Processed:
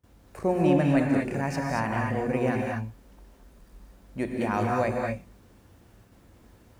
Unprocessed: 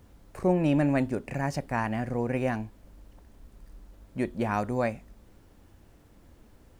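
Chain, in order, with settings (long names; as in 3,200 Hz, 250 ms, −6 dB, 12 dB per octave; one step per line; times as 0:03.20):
noise gate with hold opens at −47 dBFS
high-pass filter 45 Hz
mains-hum notches 60/120/180/240/300 Hz
reverb whose tail is shaped and stops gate 260 ms rising, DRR 0 dB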